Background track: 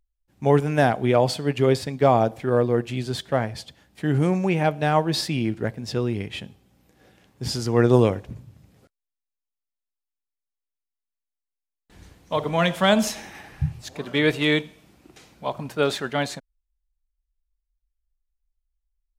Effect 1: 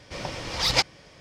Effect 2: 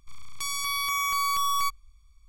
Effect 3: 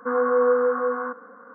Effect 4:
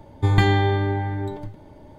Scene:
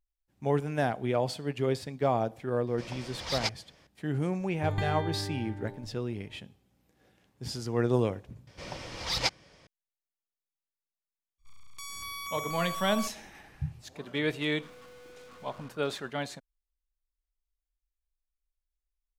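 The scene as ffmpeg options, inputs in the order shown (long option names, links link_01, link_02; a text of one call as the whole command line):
ffmpeg -i bed.wav -i cue0.wav -i cue1.wav -i cue2.wav -i cue3.wav -filter_complex "[1:a]asplit=2[link_01][link_02];[0:a]volume=-9.5dB[link_03];[3:a]aeval=exprs='(tanh(112*val(0)+0.35)-tanh(0.35))/112':channel_layout=same[link_04];[link_01]atrim=end=1.2,asetpts=PTS-STARTPTS,volume=-10dB,afade=type=in:duration=0.004:curve=hsin,afade=type=out:start_time=1.196:duration=0.004:curve=hsin,adelay=2670[link_05];[4:a]atrim=end=1.98,asetpts=PTS-STARTPTS,volume=-14.5dB,afade=type=in:duration=0.004:curve=hsin,afade=type=out:start_time=1.976:duration=0.004:curve=hsin,adelay=4400[link_06];[link_02]atrim=end=1.2,asetpts=PTS-STARTPTS,volume=-7dB,afade=type=in:duration=0.004:curve=hsin,afade=type=out:start_time=1.196:duration=0.004:curve=hsin,adelay=8470[link_07];[2:a]atrim=end=2.28,asetpts=PTS-STARTPTS,volume=-11dB,afade=type=in:duration=0.02,afade=type=out:start_time=2.26:duration=0.02,adelay=501858S[link_08];[link_04]atrim=end=1.54,asetpts=PTS-STARTPTS,volume=-10.5dB,afade=type=in:duration=0.004:curve=hsin,afade=type=out:start_time=1.536:duration=0.004:curve=hsin,adelay=14560[link_09];[link_03][link_05][link_06][link_07][link_08][link_09]amix=inputs=6:normalize=0" out.wav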